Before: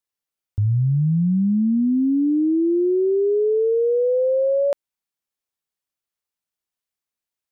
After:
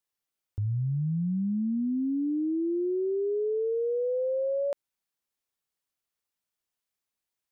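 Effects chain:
brickwall limiter −25 dBFS, peak gain reduction 10 dB

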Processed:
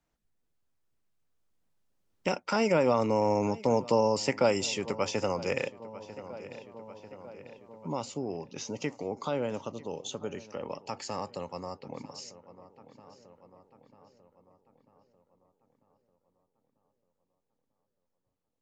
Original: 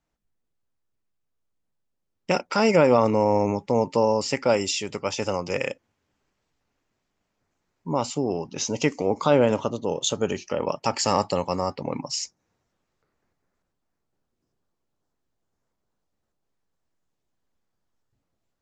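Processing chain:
source passing by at 0:04.27, 5 m/s, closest 6.4 metres
on a send: feedback echo with a low-pass in the loop 944 ms, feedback 50%, low-pass 3,000 Hz, level −21 dB
on the sum: multiband upward and downward compressor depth 40%
level −1.5 dB

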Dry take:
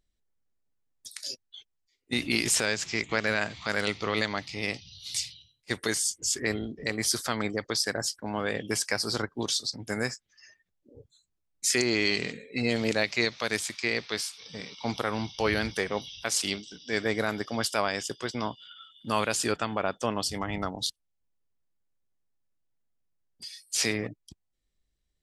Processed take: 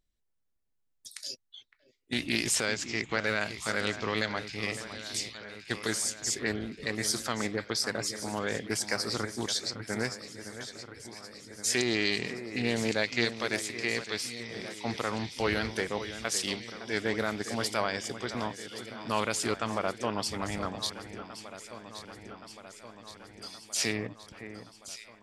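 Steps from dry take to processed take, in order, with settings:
delay that swaps between a low-pass and a high-pass 561 ms, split 2,200 Hz, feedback 81%, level −11 dB
highs frequency-modulated by the lows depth 0.16 ms
level −2.5 dB

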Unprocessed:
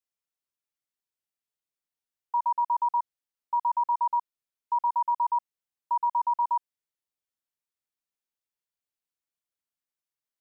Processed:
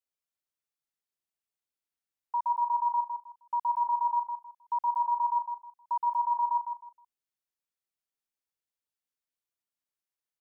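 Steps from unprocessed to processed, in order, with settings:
repeating echo 157 ms, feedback 24%, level −6.5 dB
level −3.5 dB

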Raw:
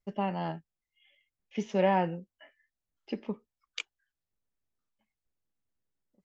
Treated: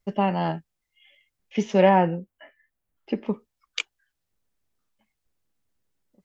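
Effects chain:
0:01.89–0:03.26: parametric band 5,400 Hz −9.5 dB 1.6 octaves
level +8.5 dB

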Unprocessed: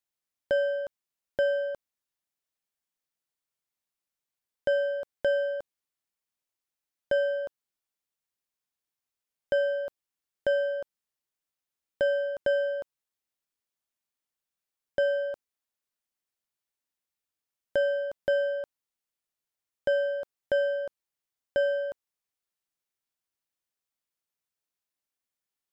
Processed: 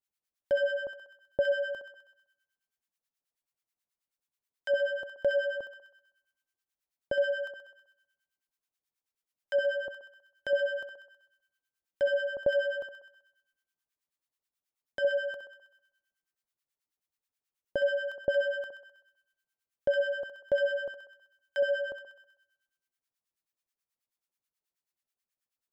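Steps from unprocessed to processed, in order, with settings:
feedback echo with a high-pass in the loop 64 ms, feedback 68%, high-pass 470 Hz, level −7.5 dB
two-band tremolo in antiphase 9.3 Hz, depth 100%, crossover 1,000 Hz
level +1.5 dB

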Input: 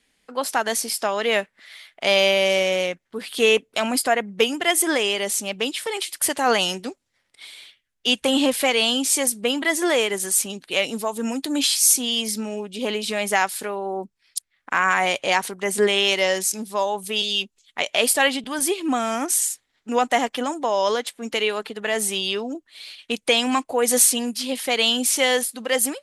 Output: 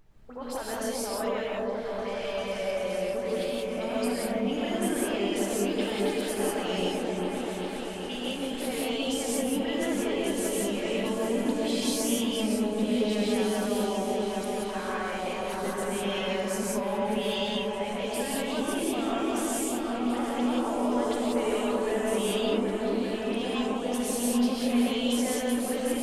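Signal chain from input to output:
high-shelf EQ 2,700 Hz −11 dB
compressor whose output falls as the input rises −24 dBFS, ratio −0.5
leveller curve on the samples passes 1
brickwall limiter −18.5 dBFS, peak gain reduction 10.5 dB
all-pass dispersion highs, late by 71 ms, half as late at 2,700 Hz
background noise brown −49 dBFS
tuned comb filter 440 Hz, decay 0.66 s, mix 50%
echo whose low-pass opens from repeat to repeat 391 ms, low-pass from 750 Hz, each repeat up 1 octave, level 0 dB
reverb whose tail is shaped and stops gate 210 ms rising, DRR −4 dB
level −5 dB

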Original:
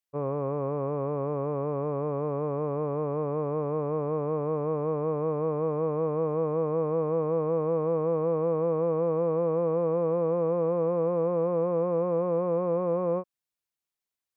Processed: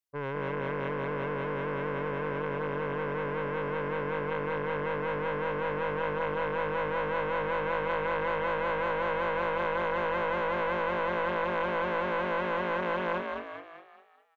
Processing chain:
phase distortion by the signal itself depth 0.64 ms
echo with shifted repeats 205 ms, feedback 46%, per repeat +50 Hz, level −4 dB
level −3 dB

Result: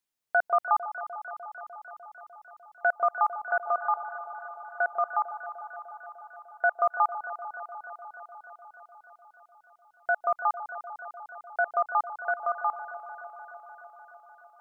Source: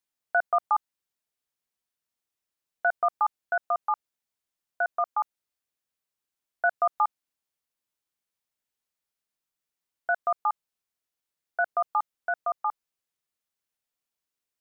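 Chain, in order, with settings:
delay that swaps between a low-pass and a high-pass 150 ms, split 1,000 Hz, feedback 85%, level −10 dB

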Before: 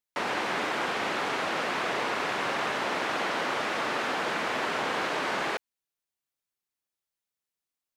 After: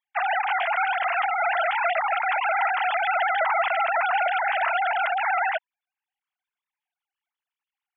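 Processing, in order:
three sine waves on the formant tracks
0:03.40–0:04.43: low-shelf EQ 260 Hz +9.5 dB
level +6 dB

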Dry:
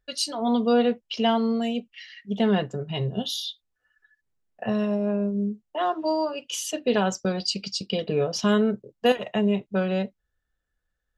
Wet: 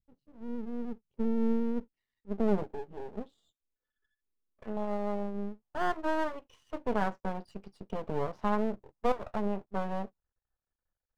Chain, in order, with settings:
low-pass filter sweep 160 Hz → 1,000 Hz, 0:00.68–0:04.31
0:02.64–0:04.77: phaser with its sweep stopped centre 310 Hz, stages 4
half-wave rectification
level −6.5 dB

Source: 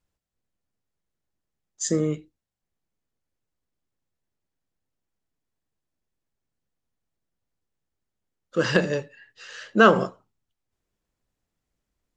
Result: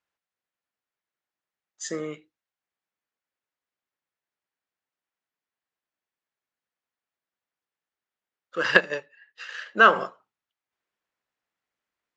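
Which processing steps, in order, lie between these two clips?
0:08.63–0:09.66: transient designer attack +7 dB, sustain −7 dB
resonant band-pass 1,700 Hz, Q 0.8
level +3 dB

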